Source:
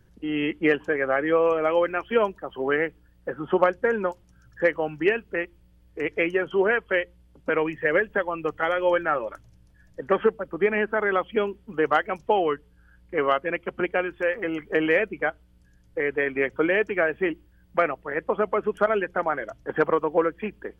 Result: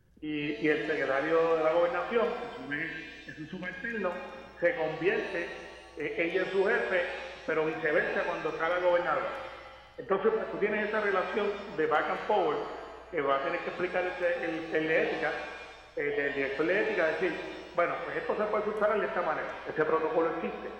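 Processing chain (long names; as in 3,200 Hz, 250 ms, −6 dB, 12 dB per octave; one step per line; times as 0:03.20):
gain on a spectral selection 0:02.23–0:03.94, 330–1,500 Hz −20 dB
reverb with rising layers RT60 1.5 s, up +7 semitones, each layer −8 dB, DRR 3.5 dB
level −7 dB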